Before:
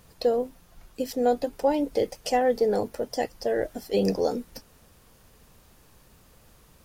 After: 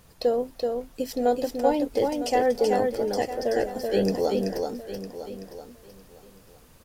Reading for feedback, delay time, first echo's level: repeats not evenly spaced, 380 ms, −4.0 dB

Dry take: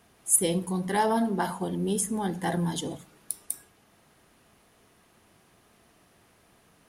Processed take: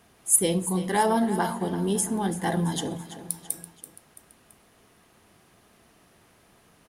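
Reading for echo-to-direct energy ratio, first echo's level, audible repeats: −12.5 dB, −13.5 dB, 3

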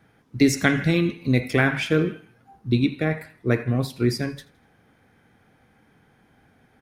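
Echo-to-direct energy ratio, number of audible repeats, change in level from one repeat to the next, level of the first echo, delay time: −20.5 dB, 2, −8.0 dB, −21.0 dB, 82 ms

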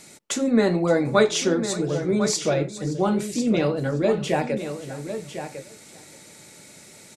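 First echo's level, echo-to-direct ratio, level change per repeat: −18.5 dB, −9.5 dB, repeats not evenly spaced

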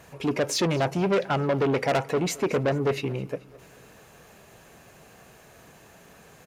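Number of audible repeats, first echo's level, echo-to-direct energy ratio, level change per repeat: 3, −21.5 dB, −20.0 dB, −5.0 dB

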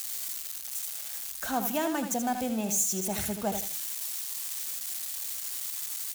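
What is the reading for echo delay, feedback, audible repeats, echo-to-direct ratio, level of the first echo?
80 ms, 28%, 3, −7.5 dB, −8.0 dB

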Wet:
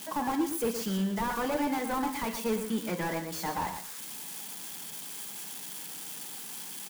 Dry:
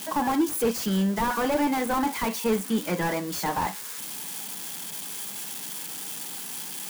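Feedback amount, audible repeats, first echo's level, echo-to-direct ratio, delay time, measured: 16%, 2, −8.5 dB, −8.5 dB, 116 ms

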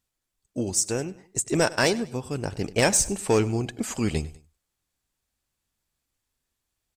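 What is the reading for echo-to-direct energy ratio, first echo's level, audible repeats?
−19.0 dB, −19.5 dB, 2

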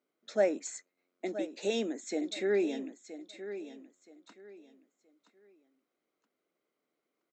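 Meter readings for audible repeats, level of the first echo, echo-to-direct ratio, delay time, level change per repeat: 2, −12.0 dB, −11.5 dB, 973 ms, −11.5 dB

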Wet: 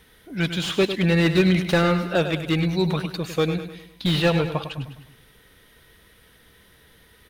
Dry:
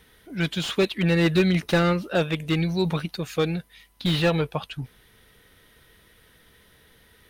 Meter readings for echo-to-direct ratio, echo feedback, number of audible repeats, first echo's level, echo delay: −9.0 dB, 47%, 4, −10.0 dB, 102 ms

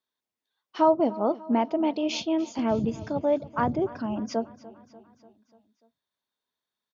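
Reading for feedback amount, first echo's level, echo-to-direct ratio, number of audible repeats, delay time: 58%, −19.0 dB, −17.0 dB, 4, 294 ms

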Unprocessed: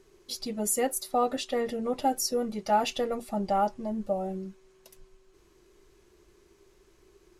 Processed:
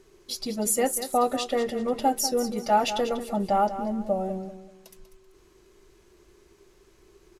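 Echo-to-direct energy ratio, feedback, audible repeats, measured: −11.0 dB, 30%, 3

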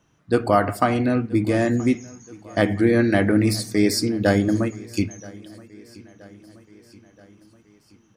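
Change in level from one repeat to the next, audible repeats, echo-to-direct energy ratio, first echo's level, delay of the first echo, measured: −5.0 dB, 3, −21.0 dB, −22.5 dB, 976 ms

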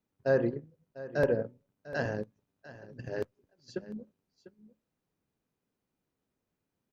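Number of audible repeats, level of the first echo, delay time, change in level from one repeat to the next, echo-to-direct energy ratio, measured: 1, −16.5 dB, 698 ms, repeats not evenly spaced, −16.5 dB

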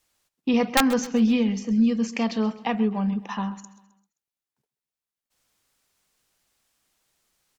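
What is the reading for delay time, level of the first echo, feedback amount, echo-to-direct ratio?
131 ms, −17.0 dB, 44%, −16.0 dB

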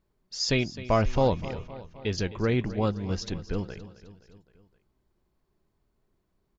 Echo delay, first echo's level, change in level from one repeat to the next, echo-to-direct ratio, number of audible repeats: 260 ms, −16.0 dB, −4.5 dB, −14.0 dB, 4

